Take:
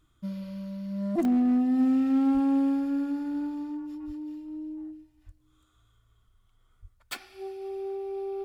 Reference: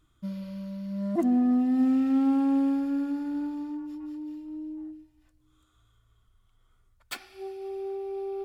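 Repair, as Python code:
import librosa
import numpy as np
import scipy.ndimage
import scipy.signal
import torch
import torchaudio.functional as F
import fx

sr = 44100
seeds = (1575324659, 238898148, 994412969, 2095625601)

y = fx.fix_declip(x, sr, threshold_db=-18.5)
y = fx.fix_deplosive(y, sr, at_s=(2.33, 4.06, 5.25, 6.81))
y = fx.fix_interpolate(y, sr, at_s=(1.25,), length_ms=1.3)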